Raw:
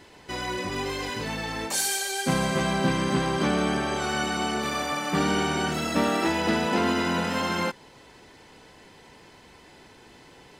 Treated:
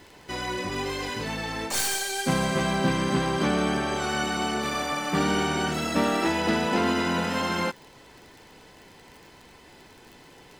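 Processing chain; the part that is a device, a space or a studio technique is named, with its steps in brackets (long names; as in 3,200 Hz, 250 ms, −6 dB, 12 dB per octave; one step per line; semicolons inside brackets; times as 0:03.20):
record under a worn stylus (stylus tracing distortion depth 0.035 ms; surface crackle 36 per second −38 dBFS; pink noise bed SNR 36 dB)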